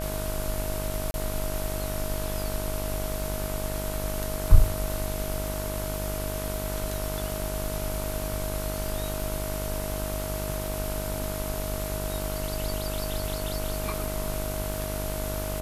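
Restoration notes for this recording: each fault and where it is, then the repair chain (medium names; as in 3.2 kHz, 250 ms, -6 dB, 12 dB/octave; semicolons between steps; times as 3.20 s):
buzz 50 Hz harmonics 31 -33 dBFS
crackle 44 per s -34 dBFS
whine 630 Hz -35 dBFS
1.11–1.14 s: dropout 31 ms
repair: de-click; band-stop 630 Hz, Q 30; de-hum 50 Hz, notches 31; interpolate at 1.11 s, 31 ms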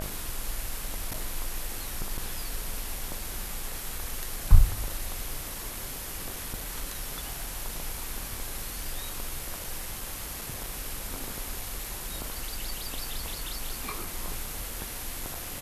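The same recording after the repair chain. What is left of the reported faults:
nothing left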